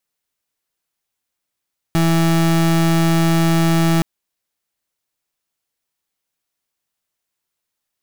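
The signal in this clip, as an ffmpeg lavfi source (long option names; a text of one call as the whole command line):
ffmpeg -f lavfi -i "aevalsrc='0.188*(2*lt(mod(165*t,1),0.32)-1)':duration=2.07:sample_rate=44100" out.wav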